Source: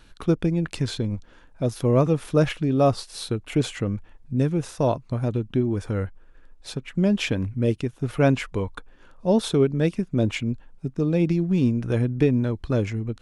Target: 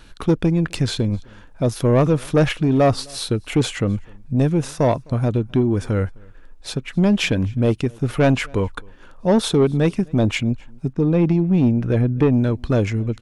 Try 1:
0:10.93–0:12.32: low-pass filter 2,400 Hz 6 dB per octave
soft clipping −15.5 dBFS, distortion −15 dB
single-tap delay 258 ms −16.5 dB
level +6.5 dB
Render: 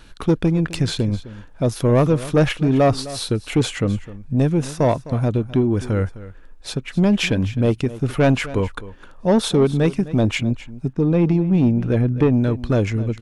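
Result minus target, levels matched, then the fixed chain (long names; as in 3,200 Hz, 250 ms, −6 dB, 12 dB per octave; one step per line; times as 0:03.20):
echo-to-direct +11 dB
0:10.93–0:12.32: low-pass filter 2,400 Hz 6 dB per octave
soft clipping −15.5 dBFS, distortion −15 dB
single-tap delay 258 ms −27.5 dB
level +6.5 dB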